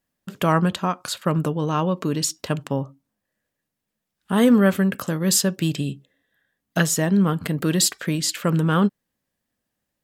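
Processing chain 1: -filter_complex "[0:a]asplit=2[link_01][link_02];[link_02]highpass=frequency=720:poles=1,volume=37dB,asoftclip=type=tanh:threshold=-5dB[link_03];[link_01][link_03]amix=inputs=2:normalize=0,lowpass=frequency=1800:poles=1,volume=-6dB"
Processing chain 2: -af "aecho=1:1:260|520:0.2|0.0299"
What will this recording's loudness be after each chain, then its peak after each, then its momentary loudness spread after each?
−15.0, −21.5 LKFS; −5.5, −5.0 dBFS; 5, 10 LU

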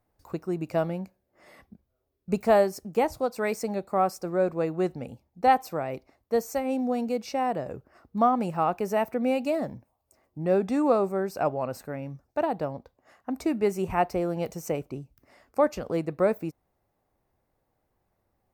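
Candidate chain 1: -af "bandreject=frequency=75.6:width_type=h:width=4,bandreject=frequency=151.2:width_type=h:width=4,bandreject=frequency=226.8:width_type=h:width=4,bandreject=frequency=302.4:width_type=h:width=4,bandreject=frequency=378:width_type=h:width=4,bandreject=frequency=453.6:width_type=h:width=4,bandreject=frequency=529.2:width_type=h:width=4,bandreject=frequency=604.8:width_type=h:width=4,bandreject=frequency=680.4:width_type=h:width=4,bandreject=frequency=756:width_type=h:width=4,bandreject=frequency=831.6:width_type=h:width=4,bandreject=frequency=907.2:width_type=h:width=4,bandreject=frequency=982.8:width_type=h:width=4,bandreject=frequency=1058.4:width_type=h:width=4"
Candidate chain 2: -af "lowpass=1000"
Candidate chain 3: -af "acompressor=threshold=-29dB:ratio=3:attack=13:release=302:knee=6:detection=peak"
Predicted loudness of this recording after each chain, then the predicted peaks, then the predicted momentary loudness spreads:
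−28.0, −28.5, −33.5 LKFS; −10.0, −11.0, −17.0 dBFS; 13, 13, 10 LU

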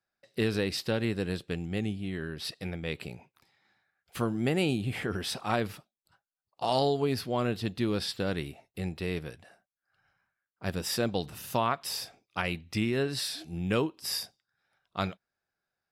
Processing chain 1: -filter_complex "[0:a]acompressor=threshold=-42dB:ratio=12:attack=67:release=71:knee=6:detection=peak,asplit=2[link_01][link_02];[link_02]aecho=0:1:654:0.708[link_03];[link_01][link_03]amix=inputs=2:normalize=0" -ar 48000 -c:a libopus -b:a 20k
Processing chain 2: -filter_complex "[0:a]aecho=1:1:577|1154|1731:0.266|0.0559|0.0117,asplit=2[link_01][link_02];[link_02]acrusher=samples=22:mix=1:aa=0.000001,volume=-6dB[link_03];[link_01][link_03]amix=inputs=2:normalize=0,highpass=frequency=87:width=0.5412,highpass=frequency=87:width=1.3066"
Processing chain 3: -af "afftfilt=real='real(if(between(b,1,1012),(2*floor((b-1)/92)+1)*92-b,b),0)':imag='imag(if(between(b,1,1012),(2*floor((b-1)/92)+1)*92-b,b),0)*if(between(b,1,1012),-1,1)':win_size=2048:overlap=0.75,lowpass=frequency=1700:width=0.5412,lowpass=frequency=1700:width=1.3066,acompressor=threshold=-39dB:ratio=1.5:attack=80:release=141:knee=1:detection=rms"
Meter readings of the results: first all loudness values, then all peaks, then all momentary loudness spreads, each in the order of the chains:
−40.5, −29.5, −36.0 LKFS; −20.0, −9.0, −18.0 dBFS; 7, 17, 11 LU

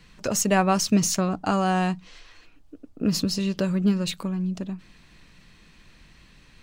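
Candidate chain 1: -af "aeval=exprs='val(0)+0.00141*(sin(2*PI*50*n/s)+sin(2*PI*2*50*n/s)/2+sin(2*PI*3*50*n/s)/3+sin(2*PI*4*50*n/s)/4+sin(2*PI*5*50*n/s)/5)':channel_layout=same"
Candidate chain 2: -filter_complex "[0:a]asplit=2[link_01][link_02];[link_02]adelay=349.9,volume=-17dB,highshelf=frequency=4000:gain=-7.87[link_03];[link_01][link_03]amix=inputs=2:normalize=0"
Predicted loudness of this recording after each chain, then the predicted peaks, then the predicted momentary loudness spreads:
−24.5, −24.5 LKFS; −9.0, −8.5 dBFS; 9, 13 LU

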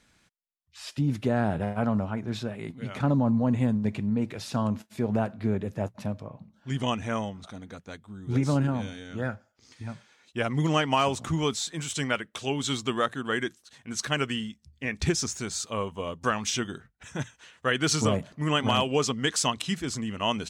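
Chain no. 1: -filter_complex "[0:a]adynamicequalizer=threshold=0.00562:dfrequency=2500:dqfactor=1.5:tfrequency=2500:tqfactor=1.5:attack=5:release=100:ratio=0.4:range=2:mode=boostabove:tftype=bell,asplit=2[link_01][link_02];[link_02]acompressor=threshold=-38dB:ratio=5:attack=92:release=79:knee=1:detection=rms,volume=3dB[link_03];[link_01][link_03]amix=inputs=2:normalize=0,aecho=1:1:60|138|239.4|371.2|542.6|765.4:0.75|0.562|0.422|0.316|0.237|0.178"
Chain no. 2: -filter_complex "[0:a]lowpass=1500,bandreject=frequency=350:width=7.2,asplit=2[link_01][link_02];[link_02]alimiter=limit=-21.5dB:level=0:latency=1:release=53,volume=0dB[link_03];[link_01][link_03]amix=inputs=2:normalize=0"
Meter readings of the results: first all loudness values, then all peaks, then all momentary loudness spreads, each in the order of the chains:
−21.0, −25.5 LKFS; −4.0, −9.5 dBFS; 10, 14 LU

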